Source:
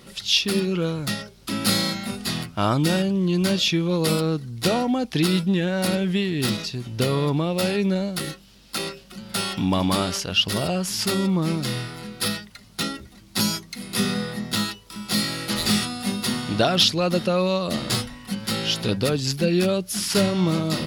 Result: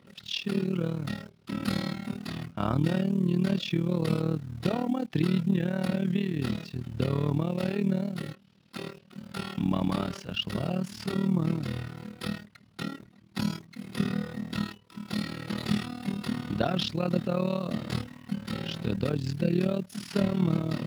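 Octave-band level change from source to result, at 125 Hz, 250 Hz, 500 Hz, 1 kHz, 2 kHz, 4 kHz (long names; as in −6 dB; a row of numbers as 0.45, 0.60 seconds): −4.0, −4.5, −8.5, −9.0, −10.5, −14.5 decibels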